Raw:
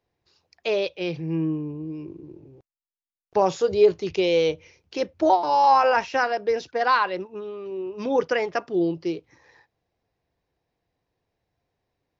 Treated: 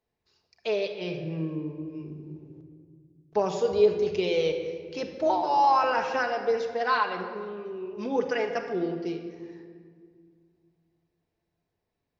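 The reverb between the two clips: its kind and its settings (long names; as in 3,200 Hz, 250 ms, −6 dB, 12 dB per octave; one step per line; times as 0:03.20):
rectangular room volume 3,100 cubic metres, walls mixed, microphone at 1.5 metres
level −6 dB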